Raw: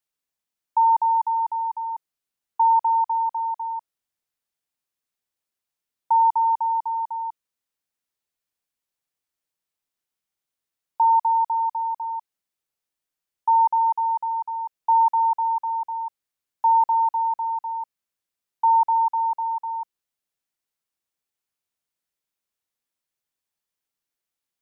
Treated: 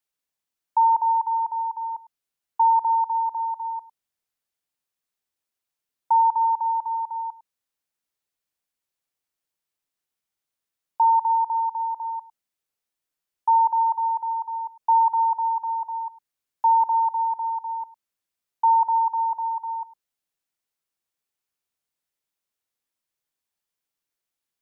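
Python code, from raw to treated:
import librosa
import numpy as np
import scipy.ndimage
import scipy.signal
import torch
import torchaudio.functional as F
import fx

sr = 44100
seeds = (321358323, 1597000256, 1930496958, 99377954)

y = fx.hum_notches(x, sr, base_hz=60, count=4)
y = y + 10.0 ** (-19.0 / 20.0) * np.pad(y, (int(104 * sr / 1000.0), 0))[:len(y)]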